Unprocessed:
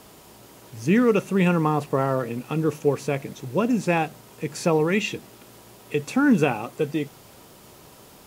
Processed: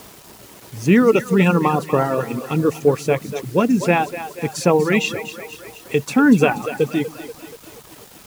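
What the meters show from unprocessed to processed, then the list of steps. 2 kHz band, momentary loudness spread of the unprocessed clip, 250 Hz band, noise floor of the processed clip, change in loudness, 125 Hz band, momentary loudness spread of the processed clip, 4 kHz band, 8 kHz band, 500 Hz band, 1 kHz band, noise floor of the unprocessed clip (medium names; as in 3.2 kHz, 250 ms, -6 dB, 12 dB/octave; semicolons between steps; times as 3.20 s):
+6.0 dB, 11 LU, +5.0 dB, -44 dBFS, +5.0 dB, +4.0 dB, 20 LU, +6.0 dB, +6.0 dB, +5.5 dB, +5.5 dB, -49 dBFS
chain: two-band feedback delay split 310 Hz, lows 135 ms, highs 240 ms, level -9 dB; reverb removal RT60 0.94 s; bit crusher 8-bit; trim +6 dB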